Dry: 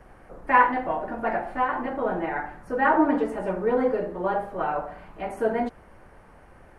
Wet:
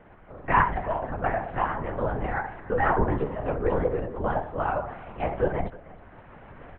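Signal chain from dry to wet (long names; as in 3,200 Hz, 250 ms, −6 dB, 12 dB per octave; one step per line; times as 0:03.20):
camcorder AGC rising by 7.3 dB per second
single-tap delay 308 ms −20 dB
linear-prediction vocoder at 8 kHz whisper
level −3 dB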